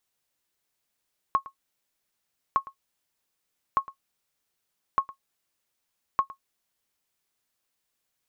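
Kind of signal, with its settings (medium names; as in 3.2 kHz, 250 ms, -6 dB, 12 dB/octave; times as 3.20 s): sonar ping 1.09 kHz, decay 0.10 s, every 1.21 s, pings 5, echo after 0.11 s, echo -19 dB -12.5 dBFS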